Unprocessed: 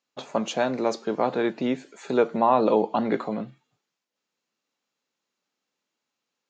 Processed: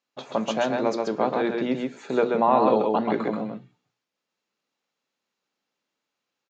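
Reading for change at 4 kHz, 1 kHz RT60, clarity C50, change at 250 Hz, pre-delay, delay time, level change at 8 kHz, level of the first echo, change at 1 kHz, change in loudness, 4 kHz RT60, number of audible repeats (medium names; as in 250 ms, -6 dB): 0.0 dB, no reverb, no reverb, +0.5 dB, no reverb, 133 ms, no reading, -3.5 dB, +1.5 dB, +1.0 dB, no reverb, 1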